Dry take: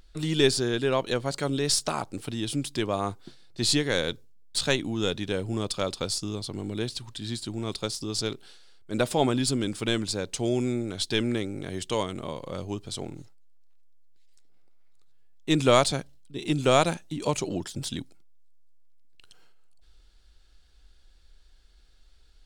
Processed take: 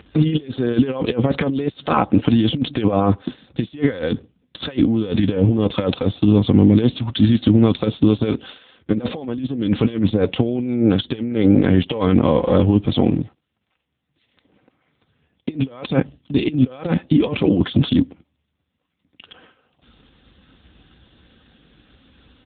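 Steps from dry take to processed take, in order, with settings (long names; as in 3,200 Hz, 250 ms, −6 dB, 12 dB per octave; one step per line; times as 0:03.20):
low-shelf EQ 160 Hz +11 dB
comb filter 3.9 ms, depth 49%
dynamic equaliser 430 Hz, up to +4 dB, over −34 dBFS, Q 2.3
compressor whose output falls as the input rises −28 dBFS, ratio −0.5
boost into a limiter +18 dB
level −3 dB
AMR narrowband 5.9 kbit/s 8,000 Hz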